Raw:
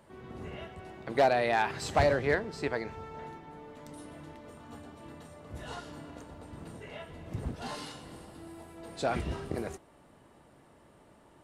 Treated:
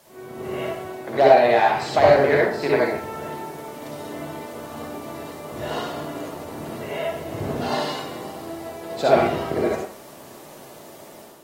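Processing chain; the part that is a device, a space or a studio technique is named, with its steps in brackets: filmed off a television (band-pass 170–6100 Hz; peaking EQ 630 Hz +5.5 dB 0.59 oct; reverberation RT60 0.50 s, pre-delay 53 ms, DRR -4 dB; white noise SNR 30 dB; level rider gain up to 7.5 dB; AAC 48 kbps 44.1 kHz)

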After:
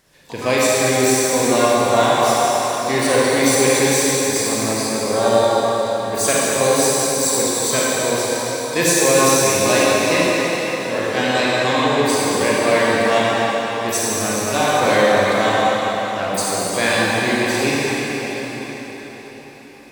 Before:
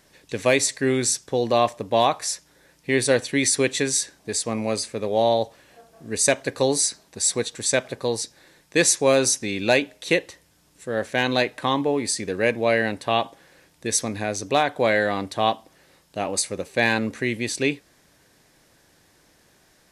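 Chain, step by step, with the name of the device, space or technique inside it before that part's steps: shimmer-style reverb (harmony voices +12 st -10 dB; reverberation RT60 5.4 s, pre-delay 31 ms, DRR -7.5 dB); trim -2 dB

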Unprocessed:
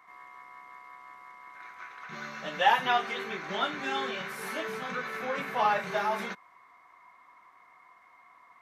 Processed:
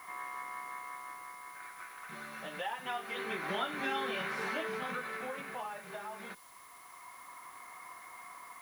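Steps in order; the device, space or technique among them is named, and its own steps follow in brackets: medium wave at night (band-pass 130–4300 Hz; compression 4:1, threshold -41 dBFS, peak gain reduction 19.5 dB; tremolo 0.25 Hz, depth 67%; whistle 10 kHz -69 dBFS; white noise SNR 20 dB); trim +7.5 dB

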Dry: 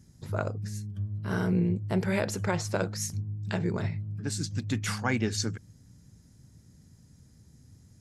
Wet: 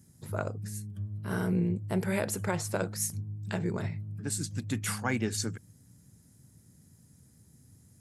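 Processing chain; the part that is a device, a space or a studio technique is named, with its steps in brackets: budget condenser microphone (high-pass 83 Hz; resonant high shelf 7.4 kHz +8 dB, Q 1.5); trim -2 dB

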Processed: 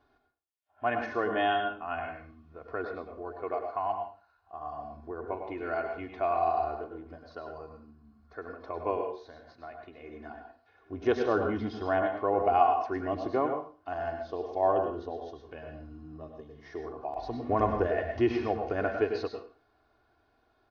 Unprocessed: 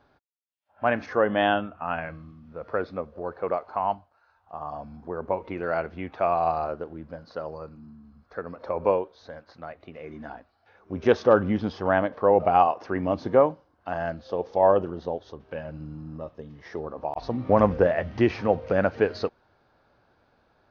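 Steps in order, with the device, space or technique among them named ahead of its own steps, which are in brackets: microphone above a desk (comb 2.8 ms, depth 70%; reverberation RT60 0.35 s, pre-delay 94 ms, DRR 4.5 dB); trim -8 dB

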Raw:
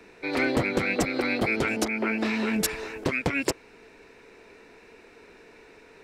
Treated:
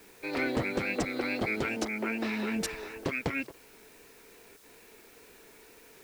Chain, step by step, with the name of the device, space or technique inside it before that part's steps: worn cassette (low-pass 7.6 kHz; wow and flutter; level dips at 3.47/4.57 s, 65 ms -15 dB; white noise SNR 24 dB); trim -5.5 dB

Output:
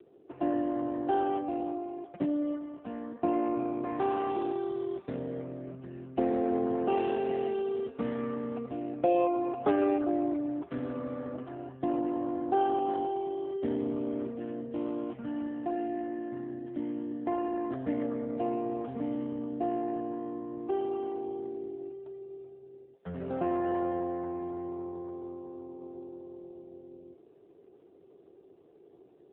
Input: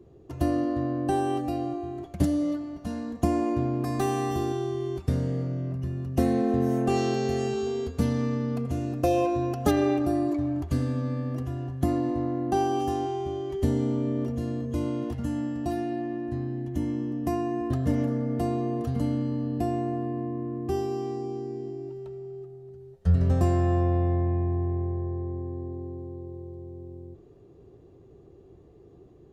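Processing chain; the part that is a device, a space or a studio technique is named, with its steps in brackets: 10.73–11.79 s: dynamic bell 620 Hz, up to +6 dB, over -56 dBFS, Q 5.6; telephone (band-pass 330–3300 Hz; AMR-NB 7.4 kbps 8 kHz)

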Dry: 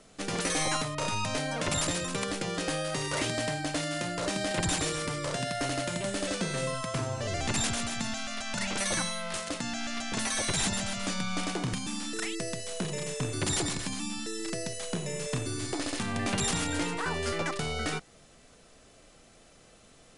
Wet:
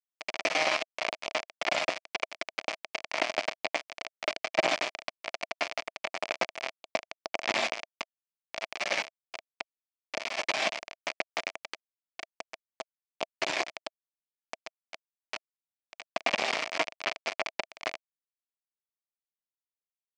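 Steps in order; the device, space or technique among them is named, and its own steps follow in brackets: 14.64–16.06 s: high-pass 110 Hz 6 dB/octave; hand-held game console (bit crusher 4-bit; cabinet simulation 410–4800 Hz, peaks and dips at 440 Hz -4 dB, 650 Hz +10 dB, 1.5 kHz -4 dB, 2.3 kHz +7 dB, 3.8 kHz -6 dB); trim +4.5 dB

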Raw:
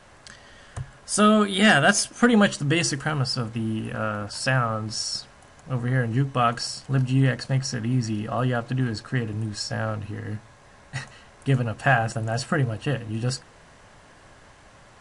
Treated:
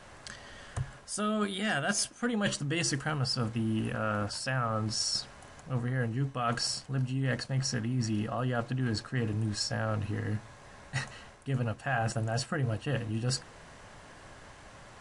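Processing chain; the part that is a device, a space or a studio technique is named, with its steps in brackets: compression on the reversed sound (reverse; compression 12:1, threshold -27 dBFS, peak gain reduction 15.5 dB; reverse)

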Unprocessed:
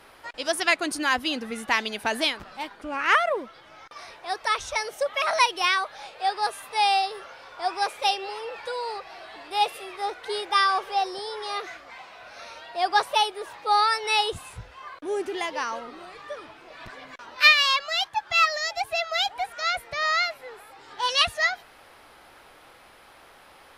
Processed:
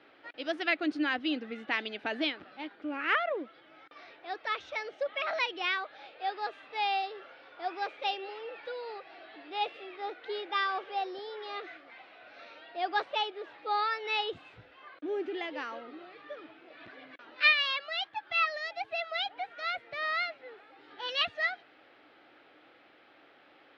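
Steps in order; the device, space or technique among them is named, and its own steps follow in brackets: kitchen radio (cabinet simulation 170–3700 Hz, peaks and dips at 190 Hz -4 dB, 300 Hz +9 dB, 1 kHz -10 dB); trim -6.5 dB

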